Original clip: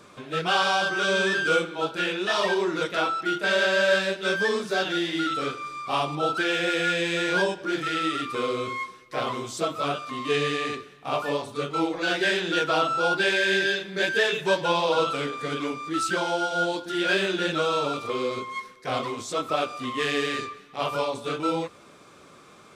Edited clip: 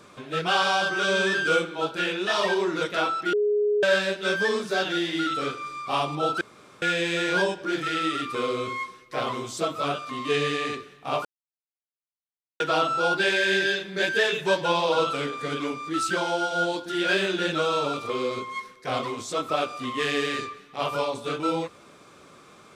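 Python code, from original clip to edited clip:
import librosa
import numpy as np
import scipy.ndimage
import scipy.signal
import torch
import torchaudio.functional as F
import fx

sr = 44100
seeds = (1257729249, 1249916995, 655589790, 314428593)

y = fx.edit(x, sr, fx.bleep(start_s=3.33, length_s=0.5, hz=416.0, db=-19.5),
    fx.room_tone_fill(start_s=6.41, length_s=0.41),
    fx.silence(start_s=11.25, length_s=1.35), tone=tone)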